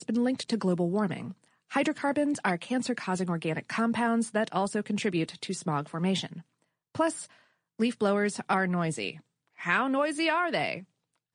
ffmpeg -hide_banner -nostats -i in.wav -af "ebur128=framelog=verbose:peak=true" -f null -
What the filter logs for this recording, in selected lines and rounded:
Integrated loudness:
  I:         -29.2 LUFS
  Threshold: -39.7 LUFS
Loudness range:
  LRA:         2.9 LU
  Threshold: -49.9 LUFS
  LRA low:   -31.5 LUFS
  LRA high:  -28.6 LUFS
True peak:
  Peak:      -11.8 dBFS